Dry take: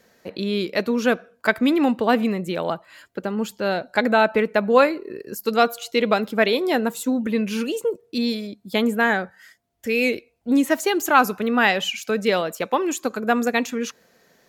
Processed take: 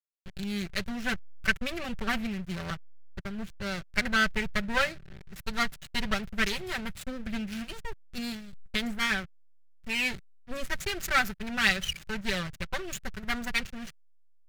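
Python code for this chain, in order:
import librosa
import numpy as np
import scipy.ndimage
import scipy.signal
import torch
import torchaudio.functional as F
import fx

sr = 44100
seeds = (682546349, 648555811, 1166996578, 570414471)

y = fx.lower_of_two(x, sr, delay_ms=5.2)
y = fx.backlash(y, sr, play_db=-25.0)
y = fx.band_shelf(y, sr, hz=510.0, db=-13.0, octaves=2.6)
y = F.gain(torch.from_numpy(y), -2.0).numpy()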